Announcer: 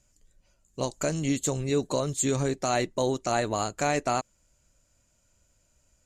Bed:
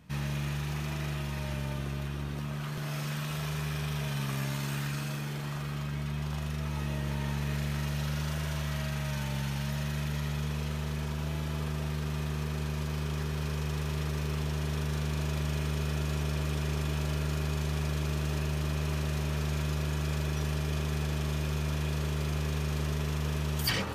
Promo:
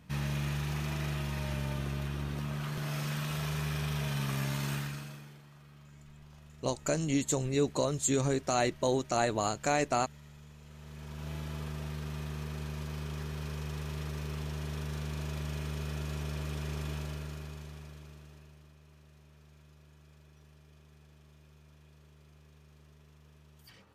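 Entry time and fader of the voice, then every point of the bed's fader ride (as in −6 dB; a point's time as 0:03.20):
5.85 s, −2.5 dB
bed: 0:04.73 −0.5 dB
0:05.47 −20 dB
0:10.61 −20 dB
0:11.31 −5.5 dB
0:16.92 −5.5 dB
0:18.78 −27.5 dB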